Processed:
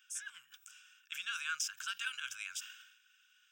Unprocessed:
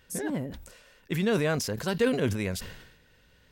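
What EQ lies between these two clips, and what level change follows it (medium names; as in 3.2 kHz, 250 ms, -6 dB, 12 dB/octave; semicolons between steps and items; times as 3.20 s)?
elliptic high-pass 1.4 kHz, stop band 50 dB; static phaser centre 2.9 kHz, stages 8; 0.0 dB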